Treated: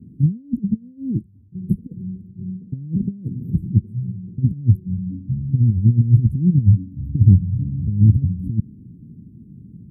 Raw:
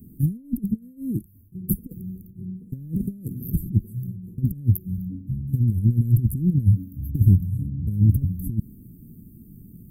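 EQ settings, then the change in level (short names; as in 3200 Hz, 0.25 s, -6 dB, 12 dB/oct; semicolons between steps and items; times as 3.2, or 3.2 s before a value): BPF 110–3700 Hz; low shelf 160 Hz +5.5 dB; low shelf 340 Hz +9.5 dB; -4.5 dB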